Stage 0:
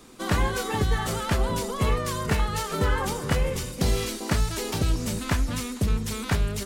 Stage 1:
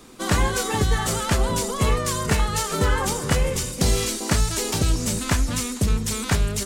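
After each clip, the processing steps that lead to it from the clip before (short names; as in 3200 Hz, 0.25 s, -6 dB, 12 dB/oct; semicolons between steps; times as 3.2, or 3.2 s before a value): dynamic EQ 7600 Hz, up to +7 dB, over -50 dBFS, Q 0.94; gain +3 dB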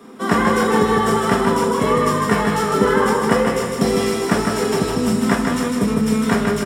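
feedback echo 0.155 s, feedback 49%, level -4 dB; reverb RT60 0.45 s, pre-delay 3 ms, DRR 0 dB; gain -6 dB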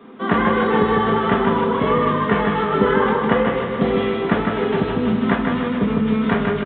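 echo 0.431 s -13.5 dB; downsampling 8000 Hz; gain -1 dB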